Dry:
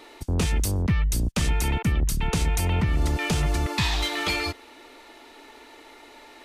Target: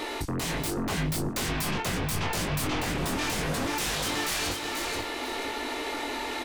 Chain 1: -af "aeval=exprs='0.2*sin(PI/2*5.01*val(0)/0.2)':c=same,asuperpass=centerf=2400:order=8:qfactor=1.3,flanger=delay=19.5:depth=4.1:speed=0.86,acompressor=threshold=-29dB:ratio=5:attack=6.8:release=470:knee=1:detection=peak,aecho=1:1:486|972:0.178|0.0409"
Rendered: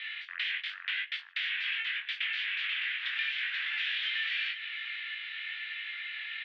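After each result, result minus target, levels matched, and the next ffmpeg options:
echo-to-direct -11 dB; 2000 Hz band +5.5 dB
-af "aeval=exprs='0.2*sin(PI/2*5.01*val(0)/0.2)':c=same,asuperpass=centerf=2400:order=8:qfactor=1.3,flanger=delay=19.5:depth=4.1:speed=0.86,acompressor=threshold=-29dB:ratio=5:attack=6.8:release=470:knee=1:detection=peak,aecho=1:1:486|972|1458:0.631|0.145|0.0334"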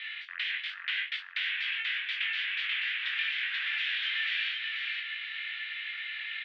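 2000 Hz band +5.0 dB
-af "aeval=exprs='0.2*sin(PI/2*5.01*val(0)/0.2)':c=same,flanger=delay=19.5:depth=4.1:speed=0.86,acompressor=threshold=-29dB:ratio=5:attack=6.8:release=470:knee=1:detection=peak,aecho=1:1:486|972|1458:0.631|0.145|0.0334"

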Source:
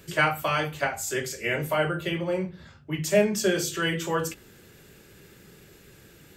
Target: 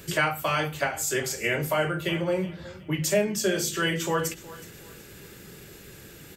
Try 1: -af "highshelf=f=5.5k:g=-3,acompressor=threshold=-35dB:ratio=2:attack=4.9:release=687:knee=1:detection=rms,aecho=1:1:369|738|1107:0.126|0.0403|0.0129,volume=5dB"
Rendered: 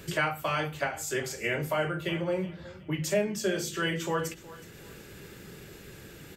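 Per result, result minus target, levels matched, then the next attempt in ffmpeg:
compressor: peak gain reduction +3.5 dB; 8000 Hz band -3.5 dB
-af "highshelf=f=5.5k:g=-3,acompressor=threshold=-28dB:ratio=2:attack=4.9:release=687:knee=1:detection=rms,aecho=1:1:369|738|1107:0.126|0.0403|0.0129,volume=5dB"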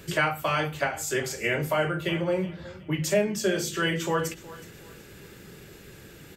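8000 Hz band -3.5 dB
-af "highshelf=f=5.5k:g=3.5,acompressor=threshold=-28dB:ratio=2:attack=4.9:release=687:knee=1:detection=rms,aecho=1:1:369|738|1107:0.126|0.0403|0.0129,volume=5dB"

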